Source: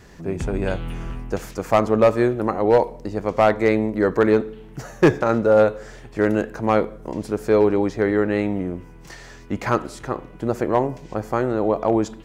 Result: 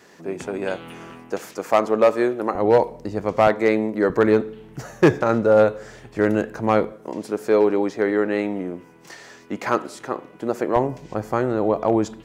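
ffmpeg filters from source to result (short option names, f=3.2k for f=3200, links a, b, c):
-af "asetnsamples=n=441:p=0,asendcmd='2.55 highpass f 68;3.47 highpass f 180;4.1 highpass f 69;6.92 highpass f 230;10.76 highpass f 65',highpass=280"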